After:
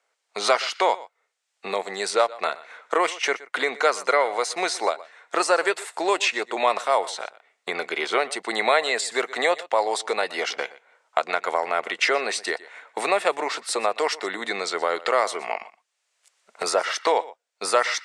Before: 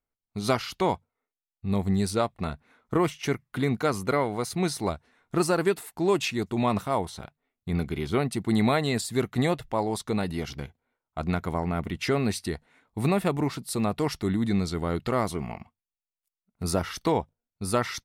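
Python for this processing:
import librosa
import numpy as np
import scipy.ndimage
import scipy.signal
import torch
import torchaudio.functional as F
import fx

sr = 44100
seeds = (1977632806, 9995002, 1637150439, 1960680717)

y = fx.recorder_agc(x, sr, target_db=-17.0, rise_db_per_s=9.8, max_gain_db=30)
y = scipy.signal.sosfilt(scipy.signal.ellip(3, 1.0, 70, [510.0, 8100.0], 'bandpass', fs=sr, output='sos'), y)
y = fx.peak_eq(y, sr, hz=1800.0, db=3.0, octaves=0.77)
y = y + 10.0 ** (-20.0 / 20.0) * np.pad(y, (int(121 * sr / 1000.0), 0))[:len(y)]
y = fx.band_squash(y, sr, depth_pct=40)
y = y * librosa.db_to_amplitude(7.5)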